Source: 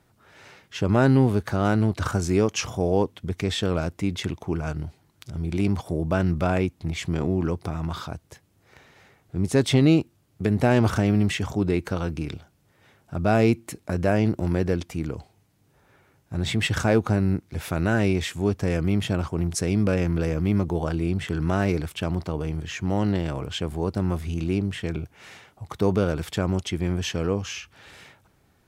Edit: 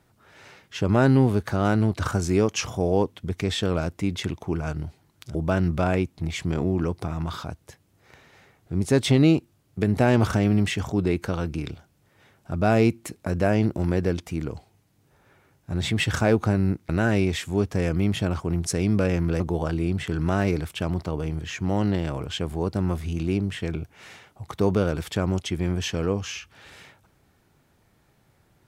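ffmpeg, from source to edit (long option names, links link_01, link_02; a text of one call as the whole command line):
ffmpeg -i in.wav -filter_complex "[0:a]asplit=4[link_01][link_02][link_03][link_04];[link_01]atrim=end=5.352[link_05];[link_02]atrim=start=5.978:end=17.522[link_06];[link_03]atrim=start=17.768:end=20.282[link_07];[link_04]atrim=start=20.608[link_08];[link_05][link_06]acrossfade=duration=0.004:curve1=hsin:curve2=hsin[link_09];[link_09][link_07]acrossfade=duration=0.004:curve1=hsin:curve2=hsin[link_10];[link_10][link_08]acrossfade=duration=0.004:curve1=hsin:curve2=hsin" out.wav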